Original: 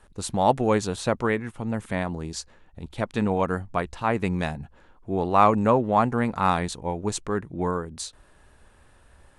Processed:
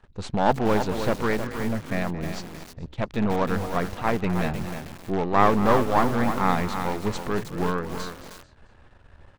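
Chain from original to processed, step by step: partial rectifier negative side -12 dB; peaking EQ 110 Hz +4 dB 1.1 oct; in parallel at -11.5 dB: integer overflow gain 19 dB; on the sum: Gaussian low-pass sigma 1.6 samples; on a send: frequency-shifting echo 220 ms, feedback 33%, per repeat +43 Hz, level -14 dB; on the sum: bit-crushed delay 314 ms, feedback 35%, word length 6-bit, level -7 dB; trim +2 dB

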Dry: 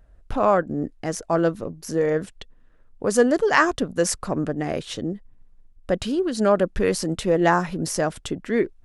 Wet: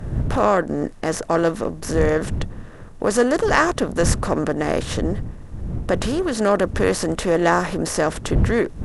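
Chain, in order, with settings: spectral levelling over time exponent 0.6; wind noise 120 Hz -26 dBFS; trim -1.5 dB

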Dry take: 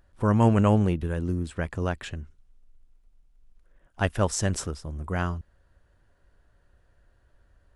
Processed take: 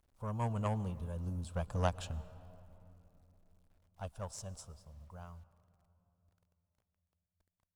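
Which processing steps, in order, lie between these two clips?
Doppler pass-by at 1.96 s, 6 m/s, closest 3.1 m; static phaser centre 800 Hz, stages 4; word length cut 12-bit, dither none; Chebyshev shaper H 3 -18 dB, 6 -25 dB, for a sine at -17.5 dBFS; on a send: reverberation RT60 3.2 s, pre-delay 105 ms, DRR 18 dB; on the sum: trim +1 dB

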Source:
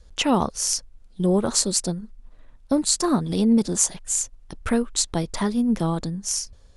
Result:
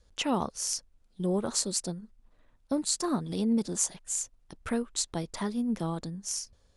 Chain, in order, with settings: bass shelf 62 Hz -9 dB; trim -8 dB

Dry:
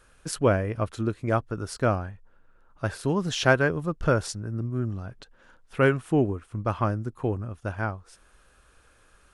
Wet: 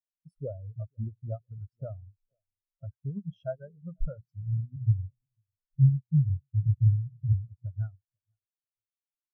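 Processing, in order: 4.76–7.33 s: inverse Chebyshev band-stop 760–4100 Hz, stop band 80 dB; hum notches 60/120/180 Hz; comb 1.5 ms, depth 37%; compression 4:1, threshold -32 dBFS, peak gain reduction 16 dB; tape echo 494 ms, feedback 65%, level -10 dB, low-pass 1.4 kHz; spectral contrast expander 4:1; trim +4 dB

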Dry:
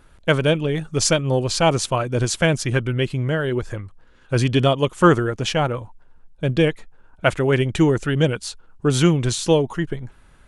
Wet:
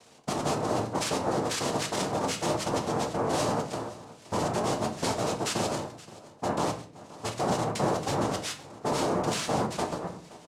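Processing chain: compression 2:1, threshold -31 dBFS, peak gain reduction 12.5 dB; peak limiter -21.5 dBFS, peak gain reduction 9.5 dB; noise-vocoded speech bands 2; on a send: delay 522 ms -19 dB; on the sum: simulated room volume 59 m³, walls mixed, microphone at 0.41 m

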